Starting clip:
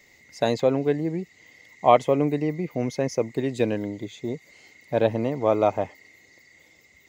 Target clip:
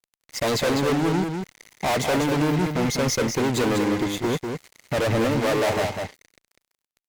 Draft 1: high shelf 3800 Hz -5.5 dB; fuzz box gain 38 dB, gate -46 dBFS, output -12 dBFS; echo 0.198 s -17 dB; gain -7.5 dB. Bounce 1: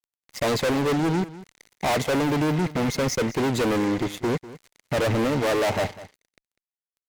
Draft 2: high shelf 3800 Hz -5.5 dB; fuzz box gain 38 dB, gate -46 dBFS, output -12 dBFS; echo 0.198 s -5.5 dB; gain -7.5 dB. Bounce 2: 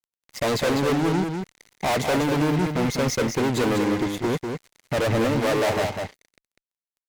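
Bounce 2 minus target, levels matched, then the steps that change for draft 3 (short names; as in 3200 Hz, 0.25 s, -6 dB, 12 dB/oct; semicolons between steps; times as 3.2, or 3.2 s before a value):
8000 Hz band -2.5 dB
remove: high shelf 3800 Hz -5.5 dB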